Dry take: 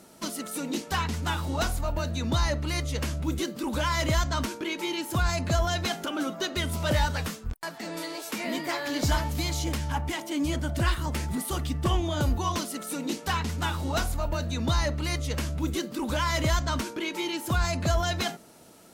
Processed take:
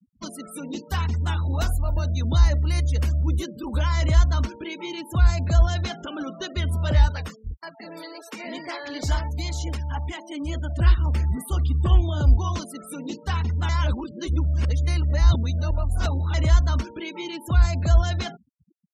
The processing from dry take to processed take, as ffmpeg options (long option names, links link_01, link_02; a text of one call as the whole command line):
ffmpeg -i in.wav -filter_complex "[0:a]asettb=1/sr,asplit=3[link_01][link_02][link_03];[link_01]atrim=end=0.874[link_04];[link_02]atrim=start=0.87:end=3.83,asetpts=PTS-STARTPTS,afade=type=in:duration=0.004:curve=qsin,afade=type=out:start_time=2.956:duration=0.004:curve=qsin,highshelf=frequency=12000:gain=10[link_05];[link_03]atrim=start=3.826[link_06];[link_04][link_05]acrossfade=duration=0.004:curve1=hsin:curve2=qsin[link_07];[link_07][link_06]acrossfade=duration=0.004:curve1=qsin:curve2=hsin,asettb=1/sr,asplit=3[link_08][link_09][link_10];[link_08]atrim=end=7.084[link_11];[link_09]atrim=start=7.08:end=10.79,asetpts=PTS-STARTPTS,afade=type=in:duration=0.004:curve=qsin,afade=type=out:start_time=3.706:duration=0.004:curve=qsin,bass=frequency=250:gain=-7,treble=frequency=4000:gain=1[link_12];[link_10]atrim=start=10.786[link_13];[link_11][link_12]acrossfade=duration=0.004:curve1=hsin:curve2=qsin[link_14];[link_14][link_13]acrossfade=duration=0.004:curve1=qsin:curve2=hsin,asplit=3[link_15][link_16][link_17];[link_15]atrim=end=13.692[link_18];[link_16]atrim=start=13.688:end=16.342,asetpts=PTS-STARTPTS,areverse[link_19];[link_17]atrim=start=16.338[link_20];[link_18][link_19]acrossfade=duration=0.004:curve1=hsin:curve2=hsin[link_21];[link_21][link_20]acrossfade=duration=0.004:curve1=hsin:curve2=hsin,equalizer=frequency=62:width=0.89:gain=14.5,afftfilt=real='re*gte(hypot(re,im),0.0178)':imag='im*gte(hypot(re,im),0.0178)':win_size=1024:overlap=0.75,volume=-2.5dB" out.wav